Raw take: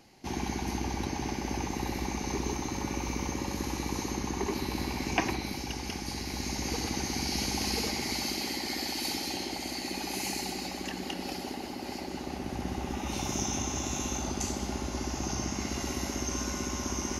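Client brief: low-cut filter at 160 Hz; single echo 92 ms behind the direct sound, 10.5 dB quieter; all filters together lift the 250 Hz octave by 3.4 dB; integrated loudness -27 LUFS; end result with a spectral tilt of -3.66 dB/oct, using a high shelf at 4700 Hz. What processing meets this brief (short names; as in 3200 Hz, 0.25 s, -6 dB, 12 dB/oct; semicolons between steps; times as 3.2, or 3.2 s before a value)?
HPF 160 Hz; bell 250 Hz +5 dB; high shelf 4700 Hz -4.5 dB; echo 92 ms -10.5 dB; gain +5.5 dB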